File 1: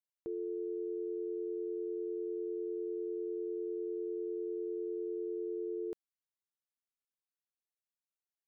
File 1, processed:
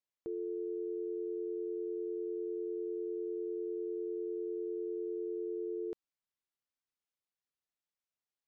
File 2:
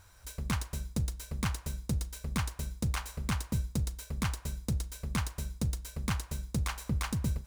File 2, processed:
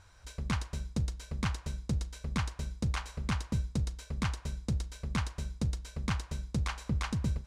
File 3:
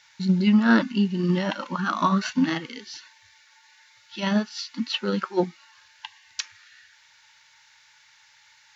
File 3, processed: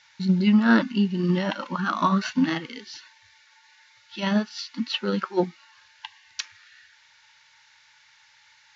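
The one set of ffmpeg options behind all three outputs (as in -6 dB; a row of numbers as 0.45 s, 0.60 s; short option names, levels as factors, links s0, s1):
-af "lowpass=6200"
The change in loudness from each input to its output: 0.0 LU, -0.5 LU, 0.0 LU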